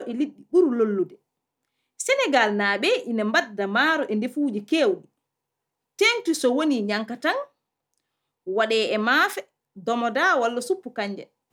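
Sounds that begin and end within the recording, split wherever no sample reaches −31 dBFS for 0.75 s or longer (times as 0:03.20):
0:02.00–0:04.97
0:05.99–0:07.43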